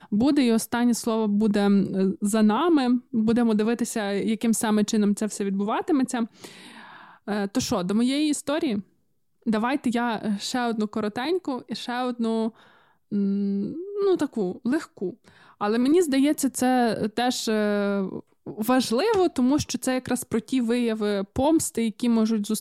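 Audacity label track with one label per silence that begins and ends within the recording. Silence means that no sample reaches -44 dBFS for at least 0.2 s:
8.830000	9.460000	silence
12.680000	13.120000	silence
18.200000	18.460000	silence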